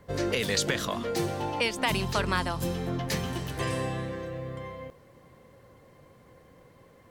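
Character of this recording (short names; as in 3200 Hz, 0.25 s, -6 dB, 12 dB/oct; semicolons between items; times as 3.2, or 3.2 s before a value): a quantiser's noise floor 12-bit, dither none; Vorbis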